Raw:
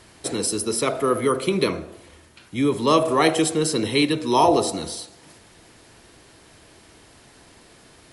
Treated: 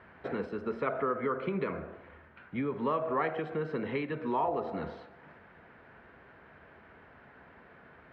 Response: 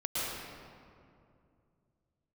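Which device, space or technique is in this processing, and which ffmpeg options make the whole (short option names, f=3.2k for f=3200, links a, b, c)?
bass amplifier: -af "acompressor=threshold=-24dB:ratio=6,highpass=70,equalizer=f=110:t=q:w=4:g=-9,equalizer=f=320:t=q:w=4:g=-9,equalizer=f=1.5k:t=q:w=4:g=6,lowpass=f=2.1k:w=0.5412,lowpass=f=2.1k:w=1.3066,volume=-2.5dB"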